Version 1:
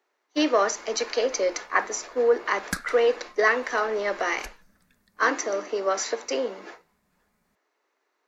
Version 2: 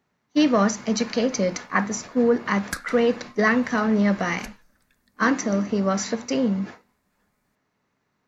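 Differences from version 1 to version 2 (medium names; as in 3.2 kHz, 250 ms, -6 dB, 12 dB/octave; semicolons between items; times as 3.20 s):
speech: remove steep high-pass 330 Hz 48 dB/octave; master: add peaking EQ 180 Hz -8.5 dB 0.67 oct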